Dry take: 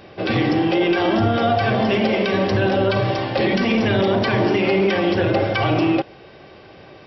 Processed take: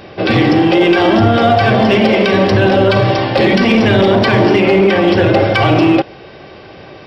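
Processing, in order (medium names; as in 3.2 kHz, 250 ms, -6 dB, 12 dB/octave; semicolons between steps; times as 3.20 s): 4.60–5.08 s: treble shelf 4 kHz -7 dB; in parallel at -4 dB: overload inside the chain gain 14.5 dB; on the sum: trim +4 dB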